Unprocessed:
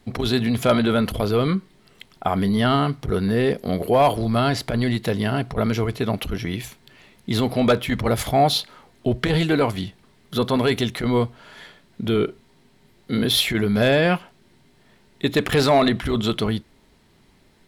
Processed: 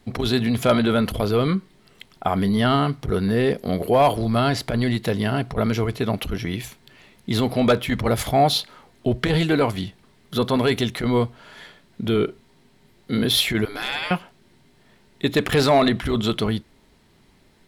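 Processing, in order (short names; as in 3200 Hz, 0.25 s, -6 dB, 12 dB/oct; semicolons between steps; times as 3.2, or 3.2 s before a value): 13.65–14.11 spectral gate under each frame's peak -15 dB weak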